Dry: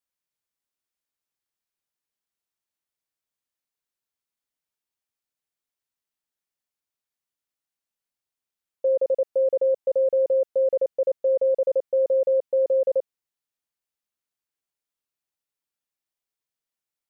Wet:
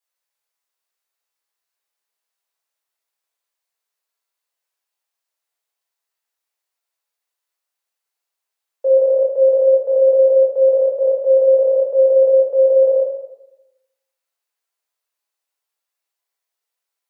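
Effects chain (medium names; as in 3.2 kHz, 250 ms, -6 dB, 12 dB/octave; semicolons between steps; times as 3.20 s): high-pass 440 Hz 24 dB/octave; reverberation RT60 1.0 s, pre-delay 6 ms, DRR -5 dB; trim +2 dB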